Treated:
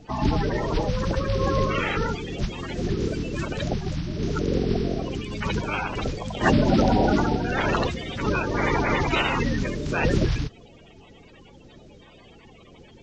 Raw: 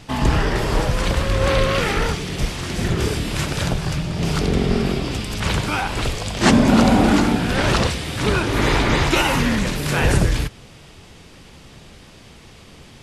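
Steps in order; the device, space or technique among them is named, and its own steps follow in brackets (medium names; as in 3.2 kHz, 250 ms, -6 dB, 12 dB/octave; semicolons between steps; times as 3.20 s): clip after many re-uploads (low-pass 5.2 kHz 24 dB/octave; coarse spectral quantiser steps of 30 dB); trim -4.5 dB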